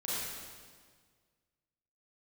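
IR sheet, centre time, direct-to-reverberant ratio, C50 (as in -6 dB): 0.135 s, -9.0 dB, -5.0 dB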